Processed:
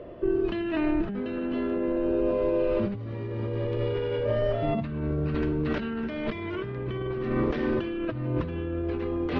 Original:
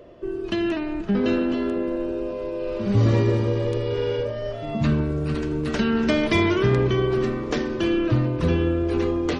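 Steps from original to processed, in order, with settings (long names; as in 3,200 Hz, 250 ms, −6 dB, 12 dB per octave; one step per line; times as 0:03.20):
dynamic equaliser 2,400 Hz, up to +3 dB, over −37 dBFS, Q 0.77
compressor whose output falls as the input rises −28 dBFS, ratio −1
high-frequency loss of the air 300 metres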